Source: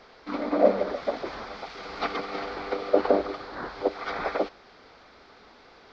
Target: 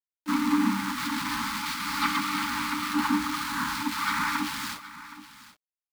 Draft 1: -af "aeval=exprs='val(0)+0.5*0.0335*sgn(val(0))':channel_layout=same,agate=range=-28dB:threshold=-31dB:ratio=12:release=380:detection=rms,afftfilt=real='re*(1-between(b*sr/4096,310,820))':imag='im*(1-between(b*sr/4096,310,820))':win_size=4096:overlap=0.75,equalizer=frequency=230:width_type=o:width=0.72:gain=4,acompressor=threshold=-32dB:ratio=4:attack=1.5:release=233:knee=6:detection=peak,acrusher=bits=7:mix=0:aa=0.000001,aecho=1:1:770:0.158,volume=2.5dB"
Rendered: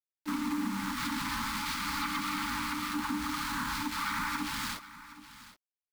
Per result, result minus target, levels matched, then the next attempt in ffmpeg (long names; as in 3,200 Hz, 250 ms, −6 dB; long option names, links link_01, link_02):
downward compressor: peak gain reduction +12 dB; 125 Hz band +2.5 dB
-af "aeval=exprs='val(0)+0.5*0.0335*sgn(val(0))':channel_layout=same,agate=range=-28dB:threshold=-31dB:ratio=12:release=380:detection=rms,afftfilt=real='re*(1-between(b*sr/4096,310,820))':imag='im*(1-between(b*sr/4096,310,820))':win_size=4096:overlap=0.75,equalizer=frequency=230:width_type=o:width=0.72:gain=4,acrusher=bits=7:mix=0:aa=0.000001,aecho=1:1:770:0.158,volume=2.5dB"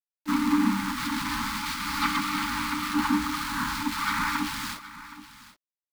125 Hz band +2.5 dB
-af "aeval=exprs='val(0)+0.5*0.0335*sgn(val(0))':channel_layout=same,agate=range=-28dB:threshold=-31dB:ratio=12:release=380:detection=rms,afftfilt=real='re*(1-between(b*sr/4096,310,820))':imag='im*(1-between(b*sr/4096,310,820))':win_size=4096:overlap=0.75,highpass=frequency=140:poles=1,equalizer=frequency=230:width_type=o:width=0.72:gain=4,acrusher=bits=7:mix=0:aa=0.000001,aecho=1:1:770:0.158,volume=2.5dB"